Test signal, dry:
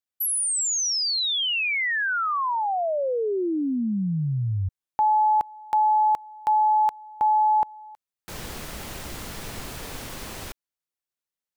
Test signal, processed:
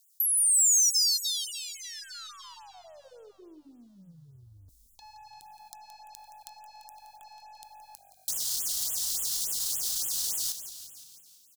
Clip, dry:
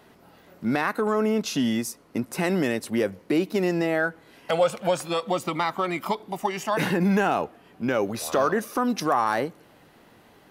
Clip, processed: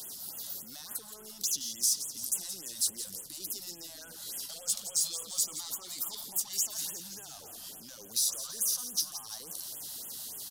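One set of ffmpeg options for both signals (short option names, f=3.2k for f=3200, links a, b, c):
-filter_complex "[0:a]areverse,acompressor=threshold=-37dB:ratio=4:attack=0.19:release=39:knee=1:detection=rms,areverse,alimiter=level_in=13dB:limit=-24dB:level=0:latency=1:release=21,volume=-13dB,acrossover=split=440|1100|6700[a][b][c][d];[a]acompressor=threshold=-57dB:ratio=2[e];[b]acompressor=threshold=-48dB:ratio=6[f];[c]acompressor=threshold=-47dB:ratio=6[g];[d]acompressor=threshold=-57dB:ratio=8[h];[e][f][g][h]amix=inputs=4:normalize=0,aeval=exprs='0.0178*(cos(1*acos(clip(val(0)/0.0178,-1,1)))-cos(1*PI/2))+0.00126*(cos(2*acos(clip(val(0)/0.0178,-1,1)))-cos(2*PI/2))+0.00178*(cos(5*acos(clip(val(0)/0.0178,-1,1)))-cos(5*PI/2))+0.00158*(cos(6*acos(clip(val(0)/0.0178,-1,1)))-cos(6*PI/2))+0.000891*(cos(8*acos(clip(val(0)/0.0178,-1,1)))-cos(8*PI/2))':c=same,asoftclip=type=tanh:threshold=-37.5dB,aexciter=amount=11.8:drive=9.5:freq=3.7k,asplit=8[i][j][k][l][m][n][o][p];[j]adelay=171,afreqshift=-48,volume=-11dB[q];[k]adelay=342,afreqshift=-96,volume=-15.2dB[r];[l]adelay=513,afreqshift=-144,volume=-19.3dB[s];[m]adelay=684,afreqshift=-192,volume=-23.5dB[t];[n]adelay=855,afreqshift=-240,volume=-27.6dB[u];[o]adelay=1026,afreqshift=-288,volume=-31.8dB[v];[p]adelay=1197,afreqshift=-336,volume=-35.9dB[w];[i][q][r][s][t][u][v][w]amix=inputs=8:normalize=0,afftfilt=real='re*(1-between(b*sr/1024,340*pow(4900/340,0.5+0.5*sin(2*PI*3.5*pts/sr))/1.41,340*pow(4900/340,0.5+0.5*sin(2*PI*3.5*pts/sr))*1.41))':imag='im*(1-between(b*sr/1024,340*pow(4900/340,0.5+0.5*sin(2*PI*3.5*pts/sr))/1.41,340*pow(4900/340,0.5+0.5*sin(2*PI*3.5*pts/sr))*1.41))':win_size=1024:overlap=0.75,volume=-6.5dB"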